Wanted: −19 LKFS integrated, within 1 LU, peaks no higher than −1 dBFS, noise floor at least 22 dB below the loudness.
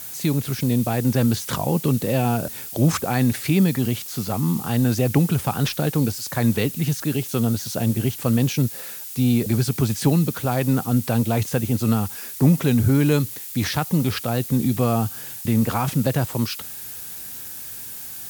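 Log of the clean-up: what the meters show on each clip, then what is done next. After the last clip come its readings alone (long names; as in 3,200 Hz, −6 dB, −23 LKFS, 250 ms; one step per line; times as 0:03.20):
background noise floor −35 dBFS; target noise floor −44 dBFS; integrated loudness −22.0 LKFS; sample peak −5.5 dBFS; target loudness −19.0 LKFS
→ noise reduction from a noise print 9 dB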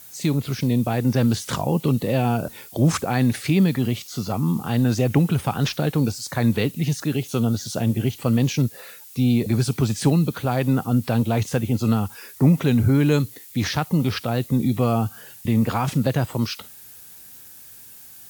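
background noise floor −44 dBFS; integrated loudness −22.0 LKFS; sample peak −6.0 dBFS; target loudness −19.0 LKFS
→ level +3 dB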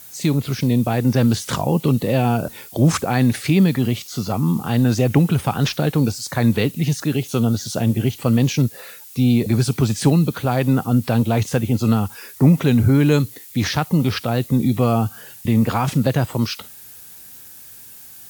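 integrated loudness −19.0 LKFS; sample peak −3.0 dBFS; background noise floor −41 dBFS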